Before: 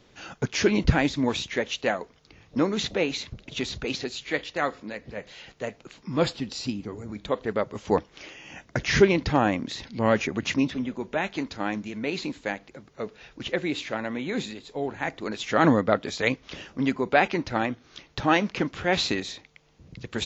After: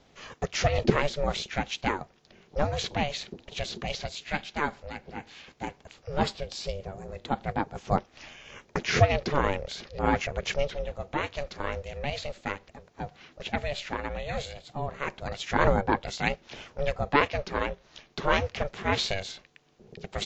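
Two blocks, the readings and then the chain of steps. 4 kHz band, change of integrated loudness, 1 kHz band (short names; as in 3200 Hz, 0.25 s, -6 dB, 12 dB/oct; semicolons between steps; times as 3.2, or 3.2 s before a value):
-2.5 dB, -3.5 dB, -0.5 dB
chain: ring modulator 290 Hz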